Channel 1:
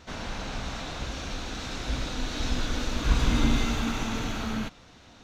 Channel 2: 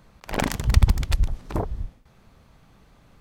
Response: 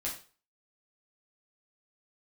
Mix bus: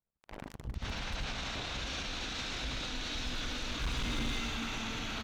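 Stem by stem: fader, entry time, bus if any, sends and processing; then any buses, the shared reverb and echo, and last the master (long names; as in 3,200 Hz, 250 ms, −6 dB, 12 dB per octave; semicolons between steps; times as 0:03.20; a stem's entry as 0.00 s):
−0.5 dB, 0.75 s, no send, parametric band 3,000 Hz +8.5 dB 2.1 octaves
−5.0 dB, 0.00 s, no send, high-shelf EQ 3,800 Hz −10 dB; brickwall limiter −14 dBFS, peak gain reduction 10 dB; power curve on the samples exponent 2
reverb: not used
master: gain into a clipping stage and back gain 19 dB; brickwall limiter −29.5 dBFS, peak gain reduction 10.5 dB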